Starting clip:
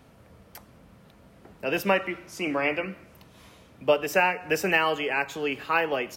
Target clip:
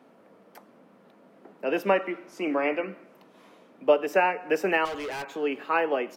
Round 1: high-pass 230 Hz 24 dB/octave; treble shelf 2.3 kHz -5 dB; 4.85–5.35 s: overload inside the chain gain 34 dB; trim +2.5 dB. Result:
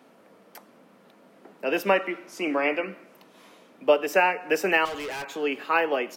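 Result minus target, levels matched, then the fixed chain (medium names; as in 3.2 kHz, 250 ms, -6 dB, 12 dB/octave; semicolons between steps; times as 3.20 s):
4 kHz band +3.5 dB
high-pass 230 Hz 24 dB/octave; treble shelf 2.3 kHz -14 dB; 4.85–5.35 s: overload inside the chain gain 34 dB; trim +2.5 dB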